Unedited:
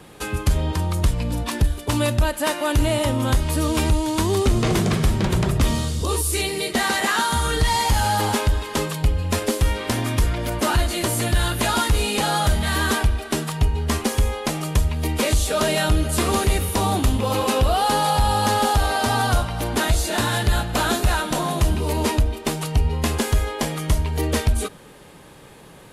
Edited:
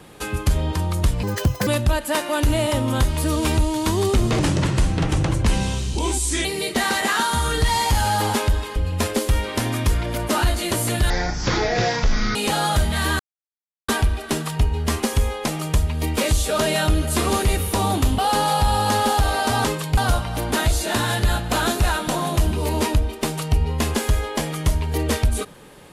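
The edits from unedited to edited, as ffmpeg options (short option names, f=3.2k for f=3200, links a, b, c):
-filter_complex "[0:a]asplit=12[a][b][c][d][e][f][g][h][i][j][k][l];[a]atrim=end=1.234[m];[b]atrim=start=1.23:end=1.99,asetpts=PTS-STARTPTS,asetrate=76293,aresample=44100,atrim=end_sample=19373,asetpts=PTS-STARTPTS[n];[c]atrim=start=1.986:end=4.714[o];[d]atrim=start=4.71:end=6.44,asetpts=PTS-STARTPTS,asetrate=37044,aresample=44100[p];[e]atrim=start=6.436:end=8.752[q];[f]atrim=start=9.078:end=11.424[r];[g]atrim=start=11.42:end=12.06,asetpts=PTS-STARTPTS,asetrate=22491,aresample=44100,atrim=end_sample=55341,asetpts=PTS-STARTPTS[s];[h]atrim=start=12.056:end=12.9,asetpts=PTS-STARTPTS,afade=t=out:st=0.84:d=0.004:c=hsin,apad=pad_dur=0.69[t];[i]atrim=start=12.9:end=17.202,asetpts=PTS-STARTPTS,afade=t=in:d=0.004:c=hsin[u];[j]atrim=start=17.748:end=19.212[v];[k]atrim=start=8.748:end=9.082[w];[l]atrim=start=19.208[x];[m][n]acrossfade=d=0.004:c1=hsin:c2=hsin[y];[y][o]acrossfade=d=0.004:c1=hsin:c2=hsin[z];[z][p]acrossfade=d=0.004:c1=hsin:c2=hsin[aa];[aa][q]acrossfade=d=0.004:c1=hsin:c2=hsin[ab];[ab][r]acrossfade=d=0.004:c1=hsin:c2=hsin[ac];[ac][s]acrossfade=d=0.004:c1=hsin:c2=hsin[ad];[t][u]concat=n=2:v=0:a=1[ae];[ad][ae]acrossfade=d=0.004:c1=hsin:c2=hsin[af];[af][v]acrossfade=d=0.004:c1=hsin:c2=hsin[ag];[ag][w]acrossfade=d=0.004:c1=hsin:c2=hsin[ah];[ah][x]acrossfade=d=0.004:c1=hsin:c2=hsin"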